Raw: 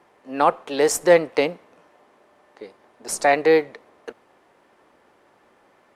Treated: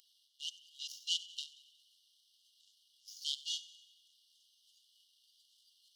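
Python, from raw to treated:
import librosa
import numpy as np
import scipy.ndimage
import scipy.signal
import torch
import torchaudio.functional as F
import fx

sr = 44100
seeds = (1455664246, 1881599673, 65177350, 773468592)

y = fx.delta_mod(x, sr, bps=32000, step_db=-17.5)
y = fx.noise_reduce_blind(y, sr, reduce_db=10)
y = fx.power_curve(y, sr, exponent=2.0)
y = fx.brickwall_highpass(y, sr, low_hz=2800.0)
y = fx.echo_wet_highpass(y, sr, ms=92, feedback_pct=55, hz=4300.0, wet_db=-16.5)
y = fx.rev_spring(y, sr, rt60_s=1.5, pass_ms=(53,), chirp_ms=50, drr_db=14.0)
y = F.gain(torch.from_numpy(y), 1.0).numpy()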